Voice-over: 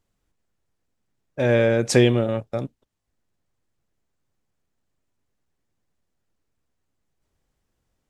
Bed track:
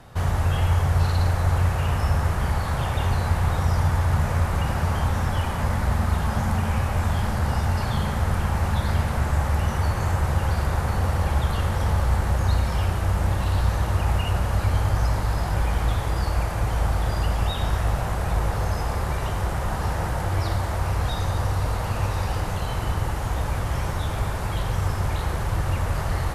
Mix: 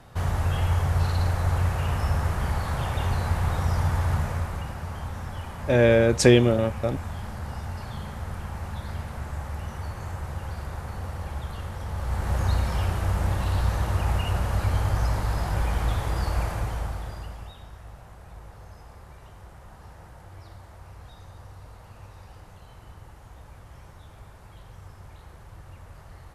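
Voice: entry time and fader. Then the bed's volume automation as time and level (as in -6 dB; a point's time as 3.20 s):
4.30 s, +0.5 dB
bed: 4.11 s -3 dB
4.77 s -11 dB
11.88 s -11 dB
12.37 s -2.5 dB
16.49 s -2.5 dB
17.69 s -21 dB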